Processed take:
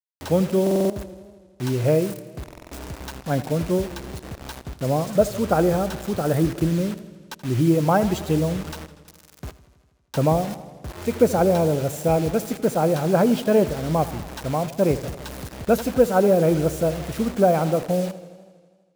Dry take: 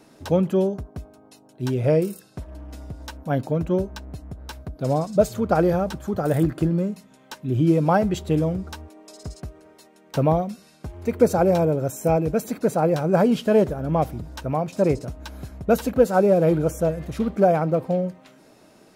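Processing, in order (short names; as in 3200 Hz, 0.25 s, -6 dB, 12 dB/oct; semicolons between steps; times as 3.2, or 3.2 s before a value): bit-crush 6-bit; stuck buffer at 0.62/2.44/9.12, samples 2048, times 5; warbling echo 81 ms, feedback 71%, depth 98 cents, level -16.5 dB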